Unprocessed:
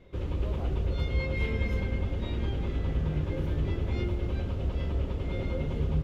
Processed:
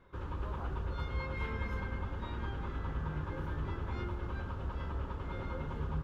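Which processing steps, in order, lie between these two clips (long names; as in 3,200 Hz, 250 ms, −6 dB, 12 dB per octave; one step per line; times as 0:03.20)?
flat-topped bell 1,200 Hz +13 dB 1.2 octaves
level −8.5 dB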